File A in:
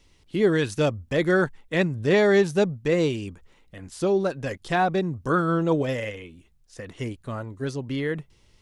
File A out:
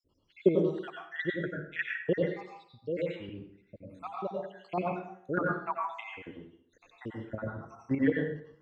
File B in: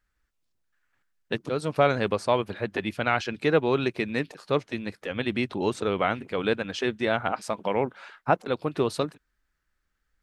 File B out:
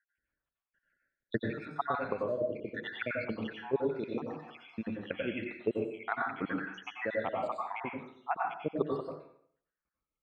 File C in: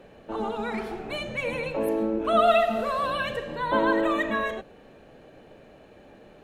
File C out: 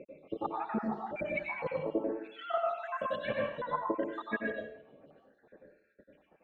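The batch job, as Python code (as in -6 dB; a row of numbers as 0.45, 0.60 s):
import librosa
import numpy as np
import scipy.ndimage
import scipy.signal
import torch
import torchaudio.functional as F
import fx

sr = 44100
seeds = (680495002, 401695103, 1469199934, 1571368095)

y = fx.spec_dropout(x, sr, seeds[0], share_pct=78)
y = scipy.signal.sosfilt(scipy.signal.butter(2, 2200.0, 'lowpass', fs=sr, output='sos'), y)
y = fx.chopper(y, sr, hz=6.7, depth_pct=60, duty_pct=25)
y = fx.highpass(y, sr, hz=180.0, slope=6)
y = fx.rider(y, sr, range_db=4, speed_s=0.5)
y = fx.rev_plate(y, sr, seeds[1], rt60_s=0.61, hf_ratio=0.75, predelay_ms=80, drr_db=-1.5)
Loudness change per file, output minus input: -9.0, -8.5, -9.5 LU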